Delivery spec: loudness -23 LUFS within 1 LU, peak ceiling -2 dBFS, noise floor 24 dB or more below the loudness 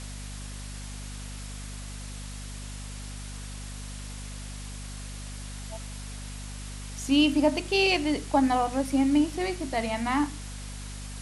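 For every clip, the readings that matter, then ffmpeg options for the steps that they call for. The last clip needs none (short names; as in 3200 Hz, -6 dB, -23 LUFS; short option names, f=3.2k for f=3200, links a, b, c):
hum 50 Hz; harmonics up to 250 Hz; hum level -37 dBFS; noise floor -39 dBFS; noise floor target -54 dBFS; loudness -30.0 LUFS; peak -11.5 dBFS; loudness target -23.0 LUFS
-> -af "bandreject=f=50:t=h:w=6,bandreject=f=100:t=h:w=6,bandreject=f=150:t=h:w=6,bandreject=f=200:t=h:w=6,bandreject=f=250:t=h:w=6"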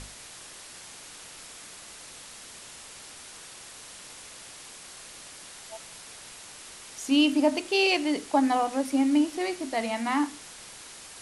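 hum none; noise floor -46 dBFS; noise floor target -50 dBFS
-> -af "afftdn=nr=6:nf=-46"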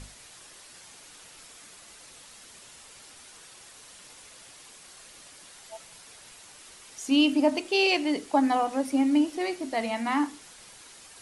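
noise floor -50 dBFS; loudness -25.5 LUFS; peak -11.5 dBFS; loudness target -23.0 LUFS
-> -af "volume=2.5dB"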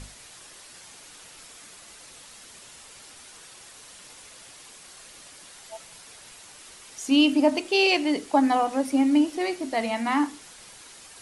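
loudness -23.0 LUFS; peak -9.0 dBFS; noise floor -48 dBFS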